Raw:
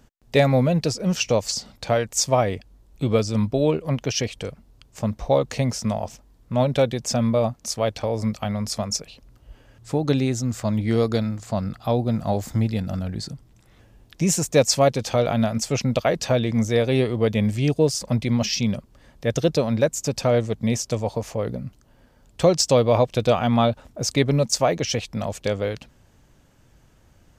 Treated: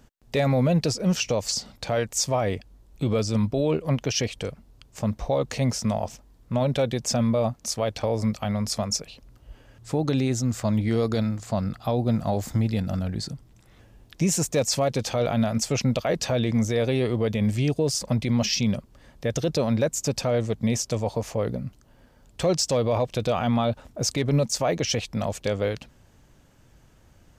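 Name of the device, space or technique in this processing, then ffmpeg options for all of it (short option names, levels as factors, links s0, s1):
clipper into limiter: -af "asoftclip=type=hard:threshold=0.447,alimiter=limit=0.2:level=0:latency=1:release=28"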